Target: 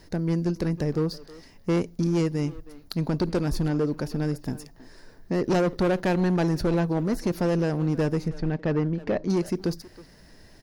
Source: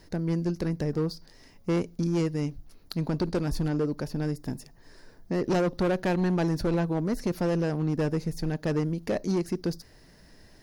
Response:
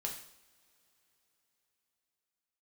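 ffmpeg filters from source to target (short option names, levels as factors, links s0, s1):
-filter_complex "[0:a]asettb=1/sr,asplit=3[s0][s1][s2];[s0]atrim=end=8.284[s3];[s1]atrim=start=8.28:end=9.3,asetpts=PTS-STARTPTS,afade=t=in:d=0.004:c=qsin,afade=t=out:st=1.016:d=0.004:c=qsin,lowpass=3000[s4];[s2]atrim=start=9.296[s5];[s3][s4]acrossfade=d=0.004:c1=hsin:c2=qsin[s6];[s6][s5]acrossfade=d=0.004:c1=qsin:c2=hsin,asplit=2[s7][s8];[s8]adelay=320,highpass=300,lowpass=3400,asoftclip=type=hard:threshold=0.0316,volume=0.2[s9];[s7][s9]amix=inputs=2:normalize=0,volume=1.33"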